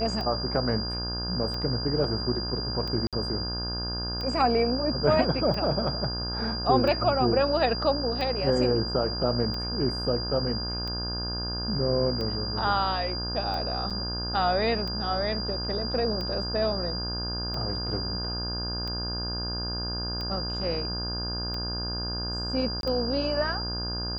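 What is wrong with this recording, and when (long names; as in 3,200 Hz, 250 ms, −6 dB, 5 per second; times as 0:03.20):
mains buzz 60 Hz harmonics 28 −34 dBFS
scratch tick 45 rpm −22 dBFS
whistle 4,800 Hz −32 dBFS
0:03.07–0:03.13: drop-out 57 ms
0:13.90–0:13.91: drop-out 6.3 ms
0:22.81–0:22.83: drop-out 22 ms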